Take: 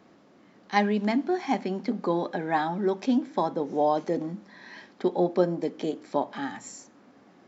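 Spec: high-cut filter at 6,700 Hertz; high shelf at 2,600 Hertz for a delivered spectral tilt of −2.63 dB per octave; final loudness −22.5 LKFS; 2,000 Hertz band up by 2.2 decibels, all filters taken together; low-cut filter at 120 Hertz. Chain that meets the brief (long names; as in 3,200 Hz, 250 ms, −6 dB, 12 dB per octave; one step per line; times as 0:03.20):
high-pass filter 120 Hz
low-pass filter 6,700 Hz
parametric band 2,000 Hz +5.5 dB
high-shelf EQ 2,600 Hz −7.5 dB
level +5.5 dB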